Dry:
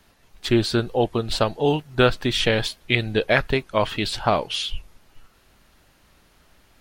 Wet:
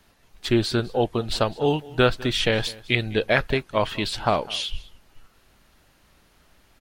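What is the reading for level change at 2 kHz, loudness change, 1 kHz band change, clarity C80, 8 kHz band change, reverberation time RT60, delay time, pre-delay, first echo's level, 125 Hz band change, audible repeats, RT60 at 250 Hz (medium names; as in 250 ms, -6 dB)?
-1.5 dB, -1.5 dB, -1.5 dB, no reverb, -1.5 dB, no reverb, 204 ms, no reverb, -21.0 dB, -1.5 dB, 1, no reverb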